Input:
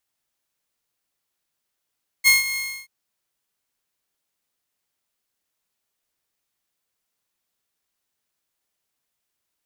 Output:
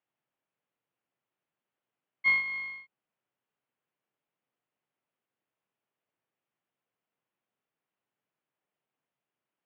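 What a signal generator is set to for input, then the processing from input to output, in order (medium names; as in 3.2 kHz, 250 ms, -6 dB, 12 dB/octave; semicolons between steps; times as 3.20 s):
ADSR saw 2.15 kHz, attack 34 ms, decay 155 ms, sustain -13.5 dB, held 0.32 s, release 311 ms -8 dBFS
elliptic band-pass 120–3000 Hz, stop band 40 dB; treble shelf 2.1 kHz -11 dB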